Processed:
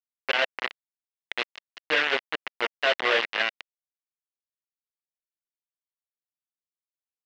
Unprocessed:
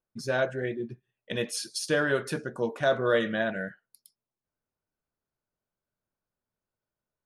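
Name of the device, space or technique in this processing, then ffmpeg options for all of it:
hand-held game console: -filter_complex "[0:a]equalizer=frequency=2200:width=0.51:gain=-2.5,asettb=1/sr,asplit=3[link_01][link_02][link_03];[link_01]atrim=end=1.404[link_04];[link_02]atrim=start=1.4:end=2.86,asetpts=PTS-STARTPTS,afade=type=in:duration=0.004:curve=qsin,afade=type=out:start_time=1.456:duration=0.004:curve=qsin,highpass=120[link_05];[link_03]atrim=start=2.856[link_06];[link_04][link_05]acrossfade=duration=0.004:curve1=hsin:curve2=qsin[link_07];[link_07][link_06]acrossfade=duration=0.004:curve1=qsin:curve2=hsin,asplit=2[link_08][link_09];[link_09]adelay=215.7,volume=-15dB,highshelf=frequency=4000:gain=-4.85[link_10];[link_08][link_10]amix=inputs=2:normalize=0,acrusher=bits=3:mix=0:aa=0.000001,highpass=480,equalizer=frequency=610:width_type=q:width=4:gain=-4,equalizer=frequency=2000:width_type=q:width=4:gain=7,equalizer=frequency=2800:width_type=q:width=4:gain=7,lowpass=frequency=4200:width=0.5412,lowpass=frequency=4200:width=1.3066,volume=1.5dB"

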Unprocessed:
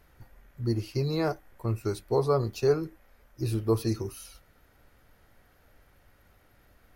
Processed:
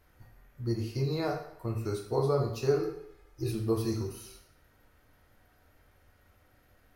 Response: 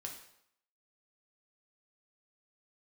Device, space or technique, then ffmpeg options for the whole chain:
bathroom: -filter_complex "[1:a]atrim=start_sample=2205[link_01];[0:a][link_01]afir=irnorm=-1:irlink=0,asettb=1/sr,asplit=3[link_02][link_03][link_04];[link_02]atrim=end=2.794[link_05];[link_03]atrim=start=2.79:end=3.52,asetpts=PTS-STARTPTS,afade=type=in:duration=0.004:curve=qsin,afade=type=out:start_time=0.726:duration=0.004:curve=qsin,aecho=1:1:2.4:0.69,atrim=end_sample=32193[link_06];[link_04]atrim=start=3.516[link_07];[link_05][link_06]acrossfade=duration=0.004:curve1=hsin:curve2=qsin[link_08];[link_08][link_07]acrossfade=duration=0.004:curve1=qsin:curve2=hsin"

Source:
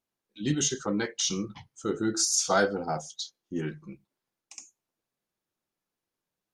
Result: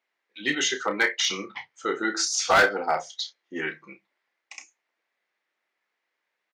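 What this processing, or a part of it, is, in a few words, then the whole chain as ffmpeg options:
megaphone: -filter_complex "[0:a]highpass=530,lowpass=3900,equalizer=frequency=2000:width_type=o:width=0.54:gain=12,asoftclip=type=hard:threshold=-21dB,asplit=2[link_01][link_02];[link_02]adelay=31,volume=-10dB[link_03];[link_01][link_03]amix=inputs=2:normalize=0,volume=7.5dB"

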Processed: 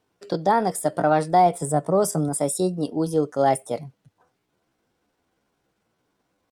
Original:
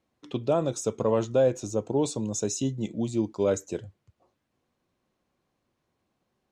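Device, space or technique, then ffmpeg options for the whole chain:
chipmunk voice: -filter_complex "[0:a]asetrate=60591,aresample=44100,atempo=0.727827,asettb=1/sr,asplit=3[link_01][link_02][link_03];[link_01]atrim=end=1.604[link_04];[link_02]atrim=start=1.6:end=2.29,asetpts=PTS-STARTPTS,afade=type=in:duration=0.004:curve=qsin,afade=type=out:start_time=0.686:duration=0.004:curve=qsin,equalizer=frequency=160:width_type=o:width=0.33:gain=8,equalizer=frequency=4000:width_type=o:width=0.33:gain=-6,equalizer=frequency=8000:width_type=o:width=0.33:gain=10[link_05];[link_03]atrim=start=2.286[link_06];[link_04][link_05]acrossfade=duration=0.004:curve1=hsin:curve2=qsin[link_07];[link_07][link_06]acrossfade=duration=0.004:curve1=qsin:curve2=hsin,volume=5dB"

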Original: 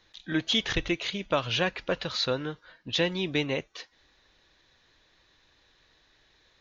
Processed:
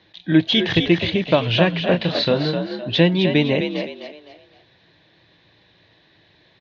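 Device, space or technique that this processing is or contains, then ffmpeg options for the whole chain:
frequency-shifting delay pedal into a guitar cabinet: -filter_complex "[0:a]asplit=5[link_01][link_02][link_03][link_04][link_05];[link_02]adelay=257,afreqshift=51,volume=-7dB[link_06];[link_03]adelay=514,afreqshift=102,volume=-16.4dB[link_07];[link_04]adelay=771,afreqshift=153,volume=-25.7dB[link_08];[link_05]adelay=1028,afreqshift=204,volume=-35.1dB[link_09];[link_01][link_06][link_07][link_08][link_09]amix=inputs=5:normalize=0,highpass=89,equalizer=frequency=110:width_type=q:width=4:gain=8,equalizer=frequency=170:width_type=q:width=4:gain=10,equalizer=frequency=320:width_type=q:width=4:gain=6,equalizer=frequency=640:width_type=q:width=4:gain=4,equalizer=frequency=1300:width_type=q:width=4:gain=-8,lowpass=frequency=4200:width=0.5412,lowpass=frequency=4200:width=1.3066,asettb=1/sr,asplit=3[link_10][link_11][link_12];[link_10]atrim=end=1.914[link_13];[link_11]atrim=start=1.91:end=2.9,asetpts=PTS-STARTPTS,afade=type=in:duration=0.004:curve=qsin,afade=type=out:start_time=0.986:duration=0.004:curve=qsin,asplit=2[link_14][link_15];[link_15]adelay=28,volume=-6.5dB[link_16];[link_14][link_16]amix=inputs=2:normalize=0,atrim=end_sample=43659[link_17];[link_12]atrim=start=2.896[link_18];[link_13][link_17]acrossfade=duration=0.004:curve1=hsin:curve2=qsin[link_19];[link_19][link_18]acrossfade=duration=0.004:curve1=qsin:curve2=hsin,volume=7.5dB"

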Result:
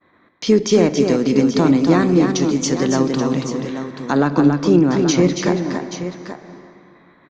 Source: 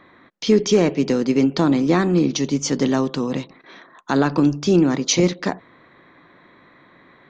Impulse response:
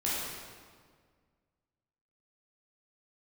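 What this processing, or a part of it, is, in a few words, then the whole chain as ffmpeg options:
ducked reverb: -filter_complex "[0:a]asplit=3[link_01][link_02][link_03];[1:a]atrim=start_sample=2205[link_04];[link_02][link_04]afir=irnorm=-1:irlink=0[link_05];[link_03]apad=whole_len=321532[link_06];[link_05][link_06]sidechaincompress=threshold=-26dB:ratio=8:attack=16:release=245,volume=-11dB[link_07];[link_01][link_07]amix=inputs=2:normalize=0,asettb=1/sr,asplit=3[link_08][link_09][link_10];[link_08]atrim=end=4.124[link_11];[link_09]atrim=start=4.12:end=5.3,asetpts=PTS-STARTPTS,afade=type=in:duration=0.004:curve=qsin,afade=type=out:start_time=1.176:duration=0.004:curve=qsin,aemphasis=mode=reproduction:type=cd[link_12];[link_10]atrim=start=5.296[link_13];[link_11][link_12]acrossfade=duration=0.004:curve1=hsin:curve2=qsin[link_14];[link_14][link_13]acrossfade=duration=0.004:curve1=qsin:curve2=hsin,agate=range=-33dB:threshold=-41dB:ratio=3:detection=peak,equalizer=frequency=3100:width=1.5:gain=-3.5,aecho=1:1:279|830:0.531|0.299,volume=1dB"

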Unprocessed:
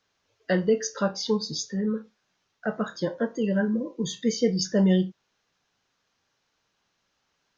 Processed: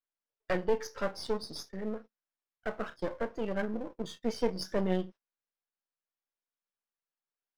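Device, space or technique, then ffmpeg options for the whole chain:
crystal radio: -af "agate=range=-20dB:threshold=-37dB:ratio=16:detection=peak,highpass=280,lowpass=2600,equalizer=frequency=5400:width_type=o:width=0.42:gain=11,aeval=exprs='if(lt(val(0),0),0.251*val(0),val(0))':channel_layout=same,volume=-2dB"

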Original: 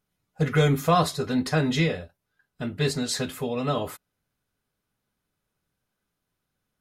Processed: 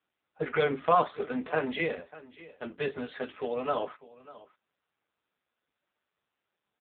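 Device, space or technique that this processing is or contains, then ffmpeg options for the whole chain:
satellite phone: -af "highpass=400,lowpass=3200,aecho=1:1:596:0.112" -ar 8000 -c:a libopencore_amrnb -b:a 5900

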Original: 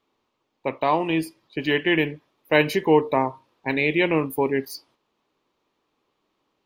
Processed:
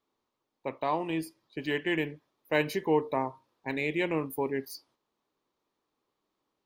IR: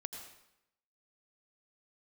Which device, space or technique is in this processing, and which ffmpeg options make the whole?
exciter from parts: -filter_complex "[0:a]asplit=2[link_01][link_02];[link_02]highpass=frequency=2500:width=0.5412,highpass=frequency=2500:width=1.3066,asoftclip=type=tanh:threshold=-28dB,volume=-6.5dB[link_03];[link_01][link_03]amix=inputs=2:normalize=0,volume=-8.5dB"

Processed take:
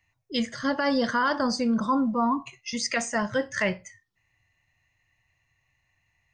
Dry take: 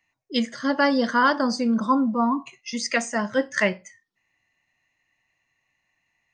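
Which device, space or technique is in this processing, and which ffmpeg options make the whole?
car stereo with a boomy subwoofer: -af "lowshelf=frequency=150:width_type=q:width=1.5:gain=12,alimiter=limit=-16dB:level=0:latency=1:release=23"

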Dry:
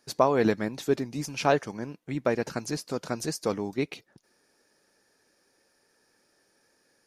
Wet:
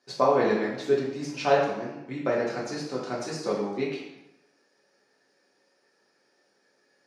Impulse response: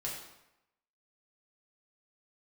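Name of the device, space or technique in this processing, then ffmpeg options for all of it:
supermarket ceiling speaker: -filter_complex "[0:a]highpass=210,lowpass=5500[link_01];[1:a]atrim=start_sample=2205[link_02];[link_01][link_02]afir=irnorm=-1:irlink=0"

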